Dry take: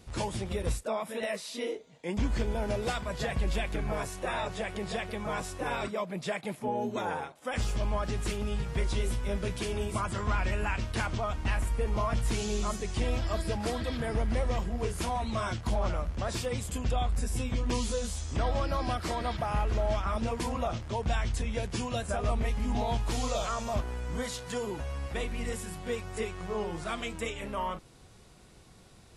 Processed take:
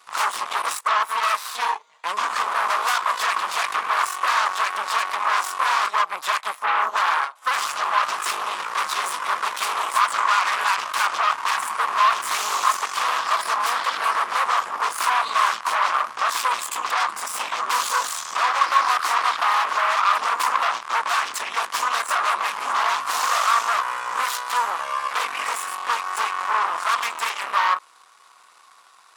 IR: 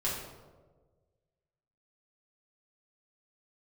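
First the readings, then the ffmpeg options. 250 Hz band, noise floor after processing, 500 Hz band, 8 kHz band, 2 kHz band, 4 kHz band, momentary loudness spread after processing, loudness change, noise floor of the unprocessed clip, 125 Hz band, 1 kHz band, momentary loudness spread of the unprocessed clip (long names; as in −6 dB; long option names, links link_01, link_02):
below −15 dB, −52 dBFS, −2.5 dB, +11.5 dB, +15.5 dB, +13.0 dB, 6 LU, +11.0 dB, −55 dBFS, below −30 dB, +17.0 dB, 5 LU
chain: -af "aeval=exprs='0.106*(cos(1*acos(clip(val(0)/0.106,-1,1)))-cos(1*PI/2))+0.0422*(cos(8*acos(clip(val(0)/0.106,-1,1)))-cos(8*PI/2))':channel_layout=same,highpass=frequency=1100:width_type=q:width=4.9,volume=4dB"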